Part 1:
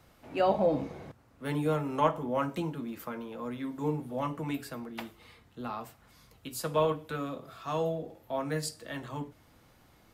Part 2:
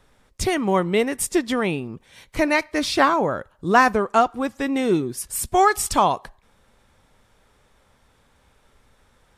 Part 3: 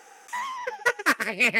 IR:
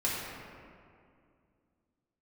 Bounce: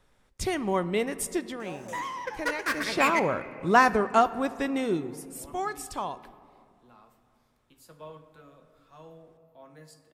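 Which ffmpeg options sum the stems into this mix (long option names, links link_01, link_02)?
-filter_complex "[0:a]adelay=1250,volume=-19.5dB,asplit=2[link_01][link_02];[link_02]volume=-14.5dB[link_03];[1:a]volume=3.5dB,afade=type=out:start_time=1.23:duration=0.35:silence=0.398107,afade=type=in:start_time=2.69:duration=0.64:silence=0.266073,afade=type=out:start_time=4.59:duration=0.62:silence=0.266073,asplit=2[link_04][link_05];[link_05]volume=-21dB[link_06];[2:a]asoftclip=type=tanh:threshold=-19.5dB,adelay=1600,volume=-4dB,asplit=2[link_07][link_08];[link_08]volume=-16dB[link_09];[3:a]atrim=start_sample=2205[link_10];[link_03][link_06][link_09]amix=inputs=3:normalize=0[link_11];[link_11][link_10]afir=irnorm=-1:irlink=0[link_12];[link_01][link_04][link_07][link_12]amix=inputs=4:normalize=0"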